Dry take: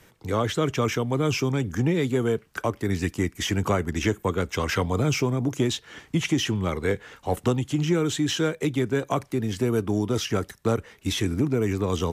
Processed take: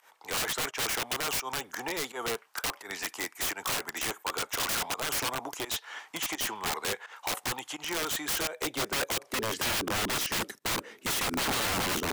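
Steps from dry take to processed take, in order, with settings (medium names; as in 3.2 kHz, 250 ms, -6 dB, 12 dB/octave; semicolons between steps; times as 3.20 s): high-pass sweep 860 Hz -> 280 Hz, 8.20–10.11 s; volume shaper 85 bpm, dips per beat 1, -17 dB, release 145 ms; integer overflow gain 24.5 dB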